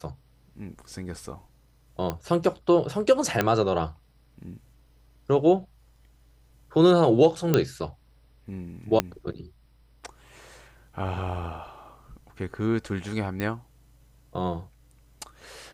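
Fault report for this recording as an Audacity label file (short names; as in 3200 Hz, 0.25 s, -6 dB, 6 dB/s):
2.100000	2.100000	pop -15 dBFS
3.410000	3.410000	pop -8 dBFS
7.540000	7.540000	pop -7 dBFS
9.000000	9.000000	pop -7 dBFS
13.400000	13.400000	pop -17 dBFS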